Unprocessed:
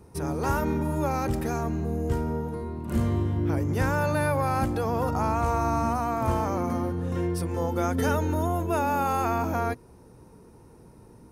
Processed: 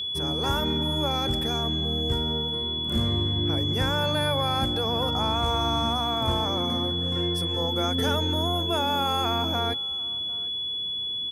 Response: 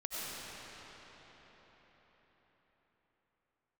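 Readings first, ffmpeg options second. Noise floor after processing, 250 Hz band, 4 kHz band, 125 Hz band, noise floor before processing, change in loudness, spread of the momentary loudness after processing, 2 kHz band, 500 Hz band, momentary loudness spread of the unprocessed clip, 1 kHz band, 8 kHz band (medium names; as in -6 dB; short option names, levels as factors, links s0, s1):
-31 dBFS, -1.0 dB, +25.5 dB, -1.0 dB, -52 dBFS, +2.0 dB, 4 LU, -1.0 dB, -1.0 dB, 4 LU, -1.0 dB, -1.0 dB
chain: -af "aeval=exprs='val(0)+0.0447*sin(2*PI*3400*n/s)':c=same,aecho=1:1:748:0.0708,volume=0.891"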